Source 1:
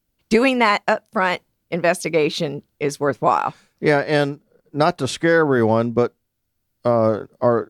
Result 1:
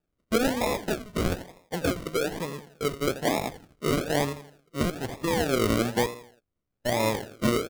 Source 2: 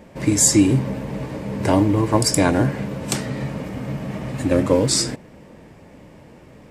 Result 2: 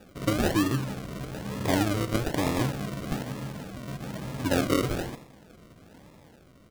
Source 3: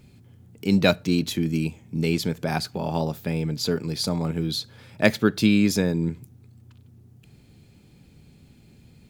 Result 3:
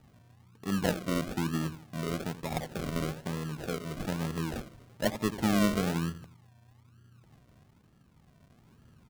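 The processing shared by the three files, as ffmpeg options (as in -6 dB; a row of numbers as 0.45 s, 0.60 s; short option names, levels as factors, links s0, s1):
-af "aecho=1:1:83|166|249|332:0.224|0.0963|0.0414|0.0178,acrusher=samples=41:mix=1:aa=0.000001:lfo=1:lforange=24.6:lforate=1.1,tremolo=f=0.68:d=0.34,volume=0.447"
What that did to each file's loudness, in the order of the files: -8.5 LU, -9.5 LU, -8.5 LU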